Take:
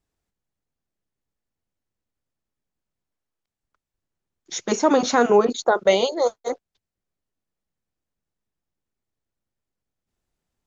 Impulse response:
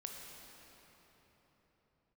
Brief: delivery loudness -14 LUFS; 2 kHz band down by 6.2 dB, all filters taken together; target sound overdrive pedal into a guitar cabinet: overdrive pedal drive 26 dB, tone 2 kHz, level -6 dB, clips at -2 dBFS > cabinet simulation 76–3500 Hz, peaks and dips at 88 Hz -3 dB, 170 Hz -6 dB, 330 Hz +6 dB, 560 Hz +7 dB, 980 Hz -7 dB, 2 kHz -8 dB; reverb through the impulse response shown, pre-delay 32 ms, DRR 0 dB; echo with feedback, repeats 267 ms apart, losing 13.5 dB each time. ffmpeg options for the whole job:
-filter_complex "[0:a]equalizer=f=2000:t=o:g=-5.5,aecho=1:1:267|534:0.211|0.0444,asplit=2[s0][s1];[1:a]atrim=start_sample=2205,adelay=32[s2];[s1][s2]afir=irnorm=-1:irlink=0,volume=1.33[s3];[s0][s3]amix=inputs=2:normalize=0,asplit=2[s4][s5];[s5]highpass=f=720:p=1,volume=20,asoftclip=type=tanh:threshold=0.794[s6];[s4][s6]amix=inputs=2:normalize=0,lowpass=f=2000:p=1,volume=0.501,highpass=76,equalizer=f=88:t=q:w=4:g=-3,equalizer=f=170:t=q:w=4:g=-6,equalizer=f=330:t=q:w=4:g=6,equalizer=f=560:t=q:w=4:g=7,equalizer=f=980:t=q:w=4:g=-7,equalizer=f=2000:t=q:w=4:g=-8,lowpass=f=3500:w=0.5412,lowpass=f=3500:w=1.3066,volume=0.562"

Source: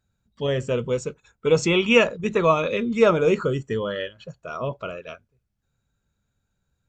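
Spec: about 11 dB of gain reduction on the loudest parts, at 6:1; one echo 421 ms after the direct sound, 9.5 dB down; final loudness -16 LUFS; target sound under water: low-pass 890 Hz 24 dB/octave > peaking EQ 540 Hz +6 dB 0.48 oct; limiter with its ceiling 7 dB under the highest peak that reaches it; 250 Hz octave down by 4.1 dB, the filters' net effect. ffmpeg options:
-af "equalizer=f=250:t=o:g=-6.5,acompressor=threshold=0.0562:ratio=6,alimiter=limit=0.075:level=0:latency=1,lowpass=f=890:w=0.5412,lowpass=f=890:w=1.3066,equalizer=f=540:t=o:w=0.48:g=6,aecho=1:1:421:0.335,volume=5.62"

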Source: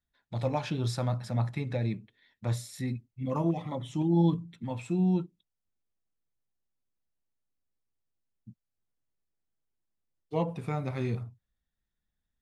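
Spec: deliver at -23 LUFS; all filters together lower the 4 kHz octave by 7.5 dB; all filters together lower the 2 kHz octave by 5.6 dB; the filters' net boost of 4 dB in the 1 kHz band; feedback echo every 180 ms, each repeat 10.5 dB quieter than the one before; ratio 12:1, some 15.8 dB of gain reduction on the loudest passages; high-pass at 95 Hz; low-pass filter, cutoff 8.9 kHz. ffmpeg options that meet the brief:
-af "highpass=95,lowpass=8900,equalizer=f=1000:t=o:g=6.5,equalizer=f=2000:t=o:g=-6.5,equalizer=f=4000:t=o:g=-8,acompressor=threshold=0.0178:ratio=12,aecho=1:1:180|360|540:0.299|0.0896|0.0269,volume=7.94"

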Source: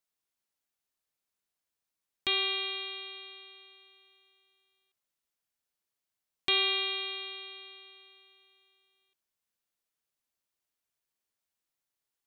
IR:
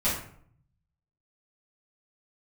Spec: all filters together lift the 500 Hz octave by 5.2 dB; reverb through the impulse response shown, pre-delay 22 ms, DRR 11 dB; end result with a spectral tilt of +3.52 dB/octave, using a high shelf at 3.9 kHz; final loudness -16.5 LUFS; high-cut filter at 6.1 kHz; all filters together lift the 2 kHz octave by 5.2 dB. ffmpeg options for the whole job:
-filter_complex "[0:a]lowpass=6100,equalizer=f=500:t=o:g=8,equalizer=f=2000:t=o:g=8.5,highshelf=f=3900:g=-6,asplit=2[s0][s1];[1:a]atrim=start_sample=2205,adelay=22[s2];[s1][s2]afir=irnorm=-1:irlink=0,volume=0.0794[s3];[s0][s3]amix=inputs=2:normalize=0,volume=3.35"

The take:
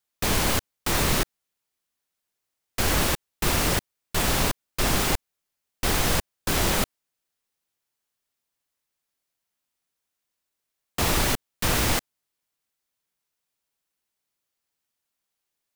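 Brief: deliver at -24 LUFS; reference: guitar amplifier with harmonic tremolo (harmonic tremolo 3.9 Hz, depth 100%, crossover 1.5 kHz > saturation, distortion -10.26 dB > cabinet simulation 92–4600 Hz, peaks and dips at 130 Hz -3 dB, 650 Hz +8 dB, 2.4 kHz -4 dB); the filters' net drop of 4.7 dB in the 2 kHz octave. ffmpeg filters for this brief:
-filter_complex "[0:a]equalizer=f=2000:t=o:g=-4.5,acrossover=split=1500[s0][s1];[s0]aeval=exprs='val(0)*(1-1/2+1/2*cos(2*PI*3.9*n/s))':c=same[s2];[s1]aeval=exprs='val(0)*(1-1/2-1/2*cos(2*PI*3.9*n/s))':c=same[s3];[s2][s3]amix=inputs=2:normalize=0,asoftclip=threshold=0.0447,highpass=92,equalizer=f=130:t=q:w=4:g=-3,equalizer=f=650:t=q:w=4:g=8,equalizer=f=2400:t=q:w=4:g=-4,lowpass=f=4600:w=0.5412,lowpass=f=4600:w=1.3066,volume=4.22"

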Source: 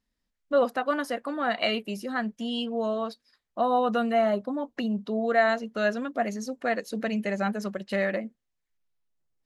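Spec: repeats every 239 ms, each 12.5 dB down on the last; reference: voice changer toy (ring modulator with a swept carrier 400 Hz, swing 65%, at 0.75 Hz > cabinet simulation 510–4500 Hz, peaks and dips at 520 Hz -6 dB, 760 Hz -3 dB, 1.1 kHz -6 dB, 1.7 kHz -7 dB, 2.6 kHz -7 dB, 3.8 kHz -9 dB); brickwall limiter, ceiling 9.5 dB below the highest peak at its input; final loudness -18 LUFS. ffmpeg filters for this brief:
-af "alimiter=limit=0.0944:level=0:latency=1,aecho=1:1:239|478|717:0.237|0.0569|0.0137,aeval=exprs='val(0)*sin(2*PI*400*n/s+400*0.65/0.75*sin(2*PI*0.75*n/s))':c=same,highpass=510,equalizer=f=520:t=q:w=4:g=-6,equalizer=f=760:t=q:w=4:g=-3,equalizer=f=1100:t=q:w=4:g=-6,equalizer=f=1700:t=q:w=4:g=-7,equalizer=f=2600:t=q:w=4:g=-7,equalizer=f=3800:t=q:w=4:g=-9,lowpass=f=4500:w=0.5412,lowpass=f=4500:w=1.3066,volume=13.3"

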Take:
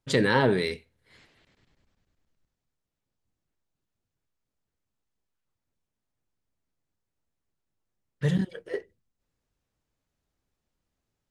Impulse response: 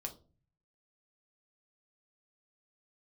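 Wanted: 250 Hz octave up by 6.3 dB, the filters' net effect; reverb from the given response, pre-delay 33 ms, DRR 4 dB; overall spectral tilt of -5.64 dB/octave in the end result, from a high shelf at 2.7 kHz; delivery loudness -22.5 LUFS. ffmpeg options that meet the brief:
-filter_complex "[0:a]equalizer=f=250:t=o:g=8.5,highshelf=f=2700:g=4.5,asplit=2[s0][s1];[1:a]atrim=start_sample=2205,adelay=33[s2];[s1][s2]afir=irnorm=-1:irlink=0,volume=0.794[s3];[s0][s3]amix=inputs=2:normalize=0,volume=0.794"

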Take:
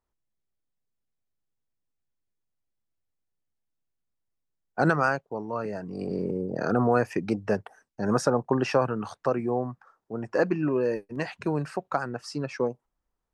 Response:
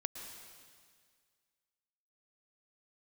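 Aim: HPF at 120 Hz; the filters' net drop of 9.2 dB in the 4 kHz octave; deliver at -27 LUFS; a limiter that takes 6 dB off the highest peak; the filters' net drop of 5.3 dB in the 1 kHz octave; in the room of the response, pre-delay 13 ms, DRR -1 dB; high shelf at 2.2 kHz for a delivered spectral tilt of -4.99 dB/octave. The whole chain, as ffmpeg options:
-filter_complex "[0:a]highpass=120,equalizer=f=1000:t=o:g=-6,highshelf=f=2200:g=-5.5,equalizer=f=4000:t=o:g=-7,alimiter=limit=0.133:level=0:latency=1,asplit=2[s0][s1];[1:a]atrim=start_sample=2205,adelay=13[s2];[s1][s2]afir=irnorm=-1:irlink=0,volume=1.19[s3];[s0][s3]amix=inputs=2:normalize=0,volume=1.06"

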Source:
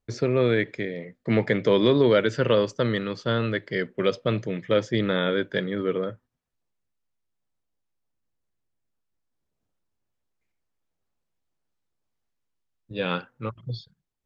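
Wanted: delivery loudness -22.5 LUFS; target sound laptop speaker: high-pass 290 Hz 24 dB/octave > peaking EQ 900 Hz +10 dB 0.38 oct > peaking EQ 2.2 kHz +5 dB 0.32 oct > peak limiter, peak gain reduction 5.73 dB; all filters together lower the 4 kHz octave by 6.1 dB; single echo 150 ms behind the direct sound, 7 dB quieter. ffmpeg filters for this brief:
-af "highpass=f=290:w=0.5412,highpass=f=290:w=1.3066,equalizer=f=900:t=o:w=0.38:g=10,equalizer=f=2200:t=o:w=0.32:g=5,equalizer=f=4000:t=o:g=-8.5,aecho=1:1:150:0.447,volume=1.58,alimiter=limit=0.316:level=0:latency=1"

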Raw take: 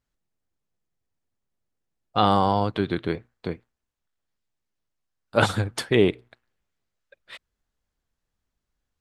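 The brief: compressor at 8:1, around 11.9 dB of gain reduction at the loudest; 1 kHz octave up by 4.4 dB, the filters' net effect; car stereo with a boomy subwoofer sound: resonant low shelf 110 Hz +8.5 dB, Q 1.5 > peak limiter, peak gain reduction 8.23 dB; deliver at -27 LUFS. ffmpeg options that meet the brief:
-af "equalizer=f=1000:t=o:g=6,acompressor=threshold=0.0631:ratio=8,lowshelf=f=110:t=q:w=1.5:g=8.5,volume=2.37,alimiter=limit=0.224:level=0:latency=1"

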